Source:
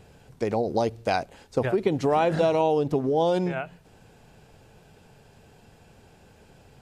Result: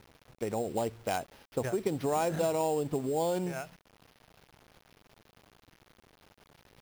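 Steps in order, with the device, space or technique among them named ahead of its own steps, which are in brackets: early 8-bit sampler (sample-rate reducer 7.9 kHz, jitter 0%; bit crusher 8-bit); trim -7.5 dB

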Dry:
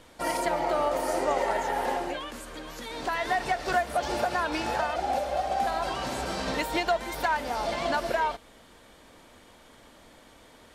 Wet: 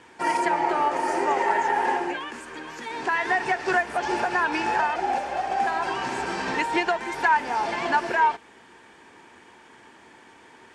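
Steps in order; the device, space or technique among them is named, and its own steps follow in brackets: car door speaker (cabinet simulation 110–9000 Hz, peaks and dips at 380 Hz +9 dB, 580 Hz -8 dB, 900 Hz +9 dB, 1.7 kHz +9 dB, 2.5 kHz +6 dB, 3.9 kHz -5 dB)

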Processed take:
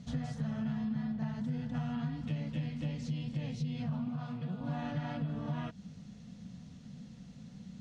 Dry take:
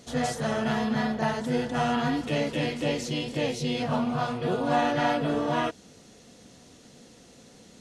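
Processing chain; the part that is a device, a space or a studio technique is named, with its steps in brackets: jukebox (low-pass 5.5 kHz 12 dB/octave; resonant low shelf 260 Hz +11.5 dB, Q 3; compression 5:1, threshold -26 dBFS, peak gain reduction 14.5 dB); 4.08–4.61 s: high-pass 150 Hz; trim -8 dB

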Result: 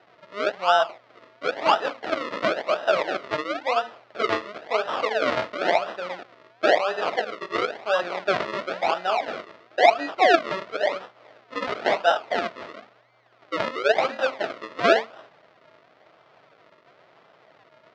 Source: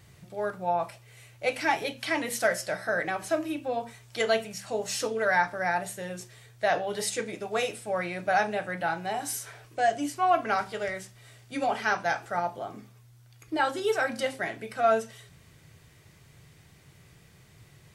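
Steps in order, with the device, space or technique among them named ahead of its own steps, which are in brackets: circuit-bent sampling toy (decimation with a swept rate 39×, swing 100% 0.97 Hz; cabinet simulation 480–4500 Hz, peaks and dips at 640 Hz +7 dB, 1.3 kHz +5 dB, 2 kHz +4 dB); trim +5.5 dB

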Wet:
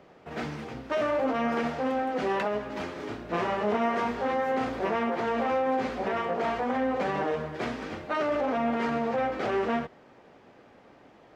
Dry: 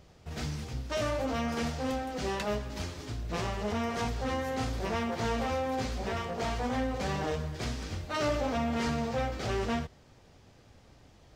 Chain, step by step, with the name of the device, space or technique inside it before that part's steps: DJ mixer with the lows and highs turned down (three-band isolator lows -23 dB, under 200 Hz, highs -18 dB, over 2.6 kHz; peak limiter -27.5 dBFS, peak gain reduction 7.5 dB); 2.93–4.52 s: doubling 29 ms -5 dB; trim +8 dB

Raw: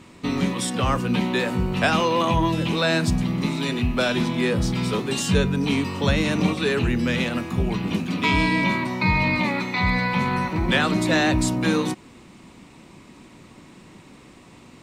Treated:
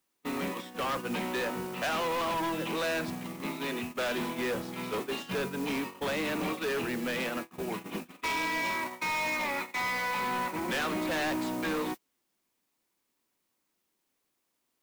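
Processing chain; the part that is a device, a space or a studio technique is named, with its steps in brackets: 8.10–10.23 s: dynamic bell 190 Hz, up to -7 dB, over -35 dBFS, Q 0.71; aircraft radio (band-pass 340–2700 Hz; hard clipper -25.5 dBFS, distortion -8 dB; white noise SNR 15 dB; gate -31 dBFS, range -32 dB); trim -3 dB

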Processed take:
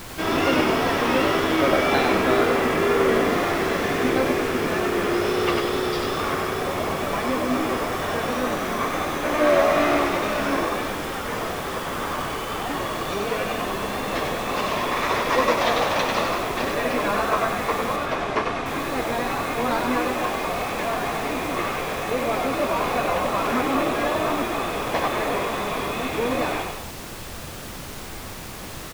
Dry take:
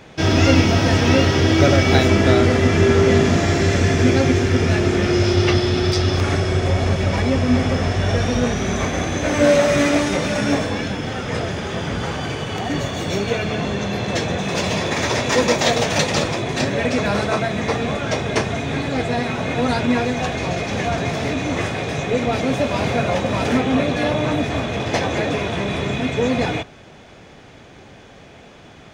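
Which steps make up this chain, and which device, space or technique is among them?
horn gramophone (band-pass 250–3700 Hz; peaking EQ 1.1 kHz +11 dB 0.38 oct; wow and flutter; pink noise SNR 12 dB); 17.96–18.66 s: distance through air 79 m; frequency-shifting echo 96 ms, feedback 50%, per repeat +63 Hz, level -4.5 dB; trim -5 dB

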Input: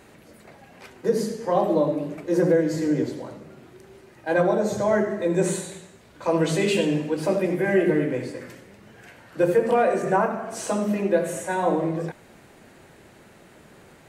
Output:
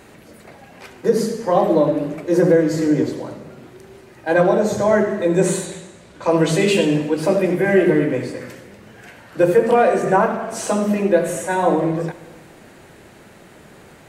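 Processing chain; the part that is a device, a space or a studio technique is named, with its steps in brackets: saturated reverb return (on a send at -13.5 dB: reverberation RT60 1.3 s, pre-delay 44 ms + saturation -24.5 dBFS, distortion -8 dB); 5.65–6.31 s: on the sum: low-pass 10 kHz 12 dB/octave; trim +5.5 dB

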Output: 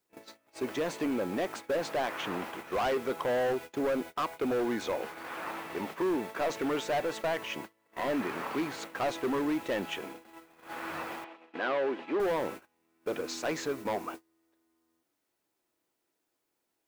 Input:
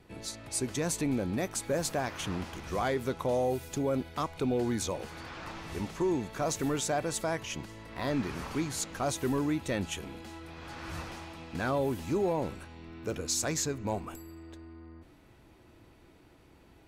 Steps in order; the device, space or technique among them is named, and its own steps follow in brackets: aircraft radio (band-pass 350–2500 Hz; hard clipper -32 dBFS, distortion -9 dB; white noise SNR 22 dB; gate -46 dBFS, range -28 dB); 11.24–12.20 s: Chebyshev band-pass 320–3200 Hz, order 2; trim +6 dB

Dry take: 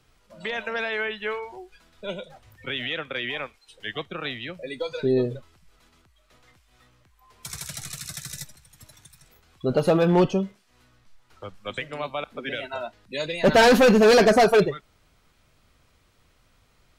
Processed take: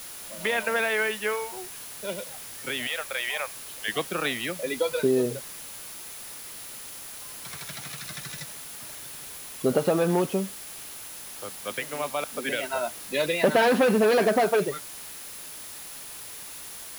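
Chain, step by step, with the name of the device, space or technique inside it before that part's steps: 2.87–3.88 s: Chebyshev high-pass 580 Hz, order 3; medium wave at night (band-pass 180–3500 Hz; compression, threshold -23 dBFS, peak gain reduction 10.5 dB; tremolo 0.22 Hz, depth 46%; whistle 10 kHz -49 dBFS; white noise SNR 13 dB); trim +5 dB

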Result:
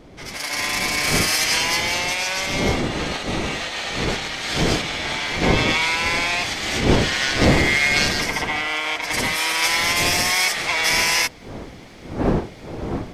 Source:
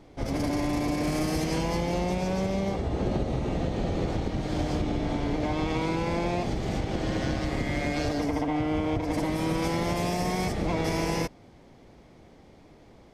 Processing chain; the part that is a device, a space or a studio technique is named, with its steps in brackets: Chebyshev high-pass 1.9 kHz, order 2; smartphone video outdoors (wind noise 410 Hz -45 dBFS; level rider gain up to 11 dB; trim +8 dB; AAC 96 kbps 48 kHz)

